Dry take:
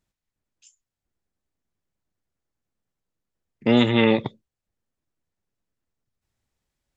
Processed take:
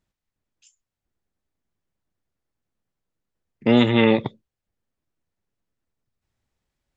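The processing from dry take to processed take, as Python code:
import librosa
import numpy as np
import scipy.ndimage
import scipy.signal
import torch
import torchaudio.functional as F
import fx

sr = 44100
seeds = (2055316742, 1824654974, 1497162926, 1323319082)

y = fx.high_shelf(x, sr, hz=5900.0, db=-7.0)
y = y * librosa.db_to_amplitude(1.5)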